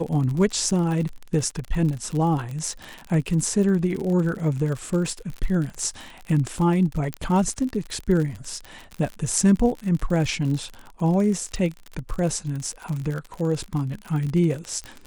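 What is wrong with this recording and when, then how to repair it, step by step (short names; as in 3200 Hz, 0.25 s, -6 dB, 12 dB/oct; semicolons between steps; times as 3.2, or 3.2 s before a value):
crackle 54/s -28 dBFS
7.14 pop -12 dBFS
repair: de-click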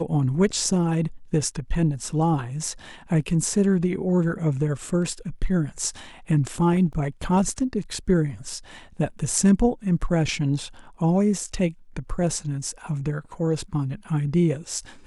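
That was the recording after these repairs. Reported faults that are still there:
none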